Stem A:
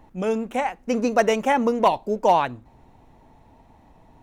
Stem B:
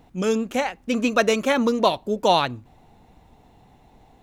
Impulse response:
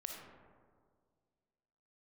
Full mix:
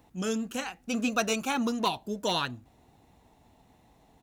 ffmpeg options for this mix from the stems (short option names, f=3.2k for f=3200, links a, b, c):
-filter_complex "[0:a]highshelf=f=9.1k:g=12,bandreject=f=920:w=13,flanger=delay=2.1:depth=5.3:regen=-77:speed=0.68:shape=triangular,volume=-4.5dB[a];[1:a]equalizer=f=10k:t=o:w=2.8:g=10,adelay=0.6,volume=-11.5dB[b];[a][b]amix=inputs=2:normalize=0,highpass=45"